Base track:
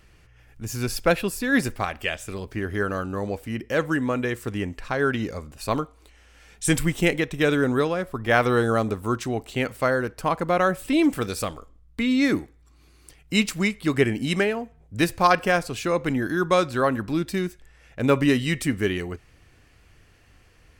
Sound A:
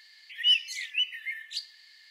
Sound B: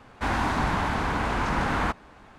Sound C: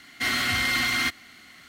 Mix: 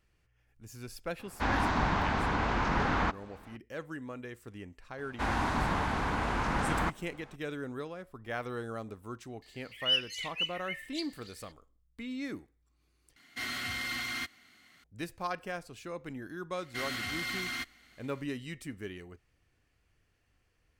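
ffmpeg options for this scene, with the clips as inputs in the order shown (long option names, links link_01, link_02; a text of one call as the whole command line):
ffmpeg -i bed.wav -i cue0.wav -i cue1.wav -i cue2.wav -filter_complex "[2:a]asplit=2[link_01][link_02];[3:a]asplit=2[link_03][link_04];[0:a]volume=-17.5dB[link_05];[link_01]lowpass=frequency=6500:width=0.5412,lowpass=frequency=6500:width=1.3066[link_06];[1:a]aecho=1:1:280:0.15[link_07];[link_05]asplit=2[link_08][link_09];[link_08]atrim=end=13.164[link_10];[link_03]atrim=end=1.68,asetpts=PTS-STARTPTS,volume=-11.5dB[link_11];[link_09]atrim=start=14.836[link_12];[link_06]atrim=end=2.38,asetpts=PTS-STARTPTS,volume=-3.5dB,afade=type=in:duration=0.004:curve=hsin,afade=type=out:start_time=2.376:duration=0.004:curve=hsin,adelay=1190[link_13];[link_02]atrim=end=2.38,asetpts=PTS-STARTPTS,volume=-5dB,afade=type=in:duration=0.004:curve=hsin,afade=type=out:start_time=2.376:duration=0.004:curve=hsin,adelay=4980[link_14];[link_07]atrim=end=2.1,asetpts=PTS-STARTPTS,volume=-5.5dB,afade=type=in:duration=0.004:curve=hsin,afade=type=out:start_time=2.096:duration=0.004:curve=hsin,adelay=9420[link_15];[link_04]atrim=end=1.68,asetpts=PTS-STARTPTS,volume=-12dB,afade=type=in:duration=0.004:curve=hsin,afade=type=out:start_time=1.676:duration=0.004:curve=hsin,adelay=16540[link_16];[link_10][link_11]acrossfade=duration=0.004:curve1=hsin:curve2=hsin[link_17];[link_17][link_12]acrossfade=duration=0.004:curve1=hsin:curve2=hsin[link_18];[link_18][link_13][link_14][link_15][link_16]amix=inputs=5:normalize=0" out.wav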